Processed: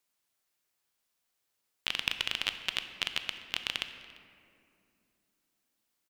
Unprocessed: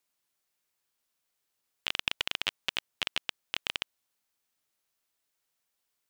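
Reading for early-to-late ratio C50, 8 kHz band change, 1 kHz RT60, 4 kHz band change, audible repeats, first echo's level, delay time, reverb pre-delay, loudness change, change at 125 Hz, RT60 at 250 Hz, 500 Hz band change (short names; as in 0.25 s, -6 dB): 9.0 dB, +0.5 dB, 2.3 s, 0.0 dB, 1, -23.5 dB, 0.344 s, 15 ms, 0.0 dB, +0.5 dB, 3.8 s, -2.5 dB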